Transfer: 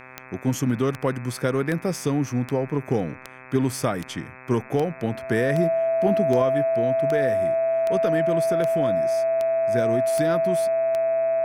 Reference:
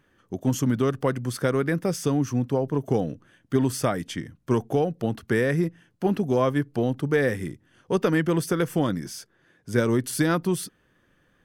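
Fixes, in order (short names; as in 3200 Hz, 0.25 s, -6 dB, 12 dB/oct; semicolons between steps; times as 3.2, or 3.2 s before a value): de-click; de-hum 128.9 Hz, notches 20; notch 660 Hz, Q 30; gain 0 dB, from 6.42 s +4.5 dB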